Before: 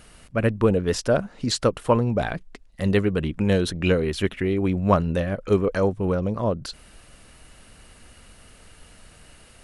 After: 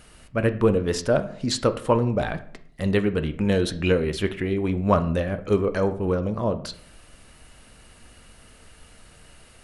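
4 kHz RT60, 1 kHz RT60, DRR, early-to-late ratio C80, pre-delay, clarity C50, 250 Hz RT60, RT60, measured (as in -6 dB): 0.40 s, 0.60 s, 9.0 dB, 18.0 dB, 6 ms, 14.0 dB, 0.70 s, 0.60 s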